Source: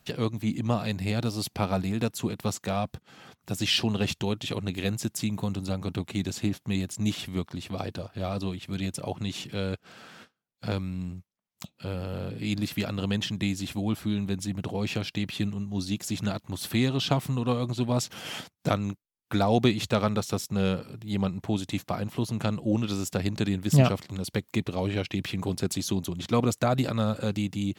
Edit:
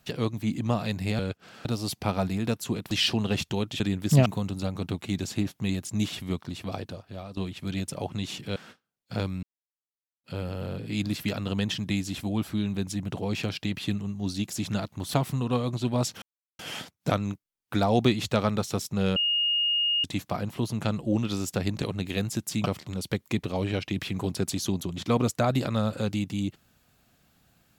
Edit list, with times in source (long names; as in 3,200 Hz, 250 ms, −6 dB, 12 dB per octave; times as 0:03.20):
0:02.45–0:03.61: remove
0:04.50–0:05.32: swap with 0:23.41–0:23.87
0:07.70–0:08.43: fade out, to −13.5 dB
0:09.62–0:10.08: move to 0:01.19
0:10.95–0:11.76: silence
0:16.66–0:17.10: remove
0:18.18: splice in silence 0.37 s
0:20.75–0:21.63: beep over 2,850 Hz −22 dBFS